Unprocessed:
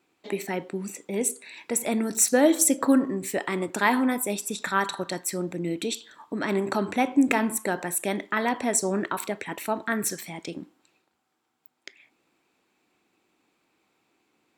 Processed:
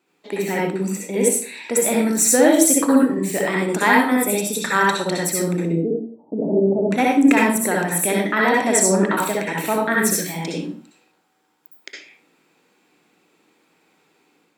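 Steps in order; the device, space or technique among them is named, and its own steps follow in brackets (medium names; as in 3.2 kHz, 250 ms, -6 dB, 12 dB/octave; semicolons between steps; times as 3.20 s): 5.65–6.91 s: steep low-pass 680 Hz 48 dB/octave; far laptop microphone (reverberation RT60 0.40 s, pre-delay 56 ms, DRR -3 dB; high-pass 130 Hz; level rider gain up to 5 dB)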